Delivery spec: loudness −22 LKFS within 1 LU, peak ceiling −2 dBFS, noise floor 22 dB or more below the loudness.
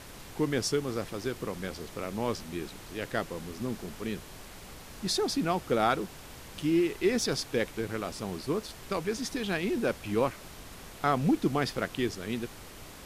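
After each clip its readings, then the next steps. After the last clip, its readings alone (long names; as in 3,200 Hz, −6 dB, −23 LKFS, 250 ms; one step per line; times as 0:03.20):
background noise floor −47 dBFS; target noise floor −54 dBFS; integrated loudness −31.5 LKFS; sample peak −13.0 dBFS; target loudness −22.0 LKFS
→ noise reduction from a noise print 7 dB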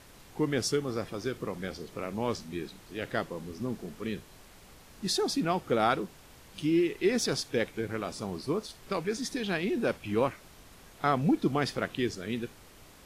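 background noise floor −54 dBFS; integrated loudness −31.5 LKFS; sample peak −13.0 dBFS; target loudness −22.0 LKFS
→ level +9.5 dB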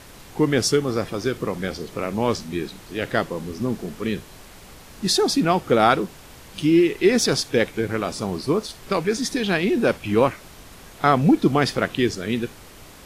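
integrated loudness −22.0 LKFS; sample peak −3.5 dBFS; background noise floor −45 dBFS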